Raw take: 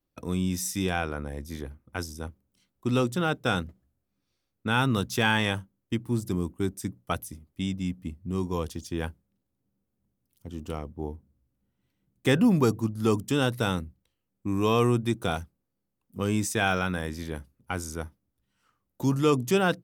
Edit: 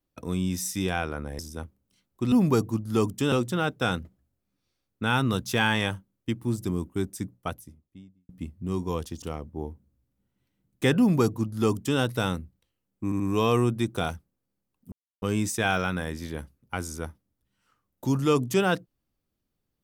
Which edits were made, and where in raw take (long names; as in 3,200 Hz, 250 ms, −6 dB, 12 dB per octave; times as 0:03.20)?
0:01.39–0:02.03: remove
0:06.76–0:07.93: fade out and dull
0:08.86–0:10.65: remove
0:12.42–0:13.42: duplicate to 0:02.96
0:14.47: stutter 0.08 s, 3 plays
0:16.19: splice in silence 0.30 s